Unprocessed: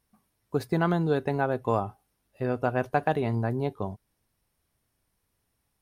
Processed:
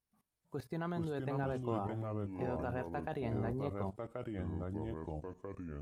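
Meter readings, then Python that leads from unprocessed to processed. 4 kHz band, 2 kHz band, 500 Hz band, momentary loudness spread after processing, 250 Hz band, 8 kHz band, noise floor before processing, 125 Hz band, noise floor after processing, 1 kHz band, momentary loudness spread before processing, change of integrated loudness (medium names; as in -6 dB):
-12.0 dB, -13.5 dB, -10.5 dB, 8 LU, -8.5 dB, no reading, -77 dBFS, -8.0 dB, under -85 dBFS, -12.0 dB, 10 LU, -11.5 dB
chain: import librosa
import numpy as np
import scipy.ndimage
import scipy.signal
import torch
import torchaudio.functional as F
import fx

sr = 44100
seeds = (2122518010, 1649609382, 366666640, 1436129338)

y = fx.level_steps(x, sr, step_db=18)
y = fx.echo_pitch(y, sr, ms=283, semitones=-4, count=2, db_per_echo=-3.0)
y = y * 10.0 ** (-2.0 / 20.0)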